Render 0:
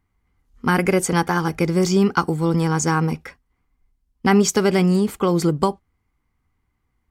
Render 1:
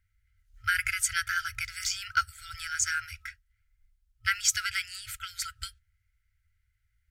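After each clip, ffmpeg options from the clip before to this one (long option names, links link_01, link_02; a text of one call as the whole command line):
ffmpeg -i in.wav -af "afftfilt=real='re*(1-between(b*sr/4096,110,1300))':imag='im*(1-between(b*sr/4096,110,1300))':win_size=4096:overlap=0.75,acrusher=bits=9:mode=log:mix=0:aa=0.000001,volume=-2dB" out.wav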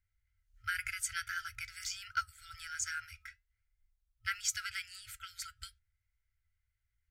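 ffmpeg -i in.wav -af "flanger=delay=2.8:depth=2.6:regen=85:speed=0.47:shape=triangular,volume=-4.5dB" out.wav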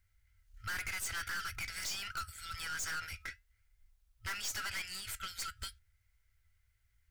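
ffmpeg -i in.wav -af "aeval=exprs='(tanh(224*val(0)+0.45)-tanh(0.45))/224':channel_layout=same,volume=10.5dB" out.wav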